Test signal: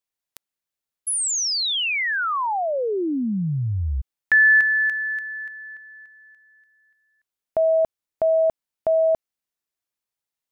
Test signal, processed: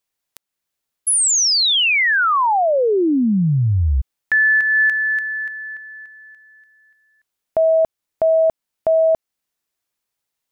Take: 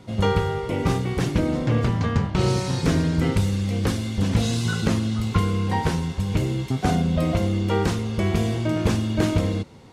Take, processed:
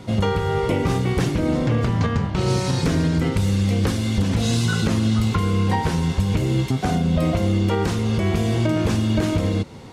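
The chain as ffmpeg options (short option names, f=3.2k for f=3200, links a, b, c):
-af "alimiter=limit=-18.5dB:level=0:latency=1:release=279,volume=7.5dB"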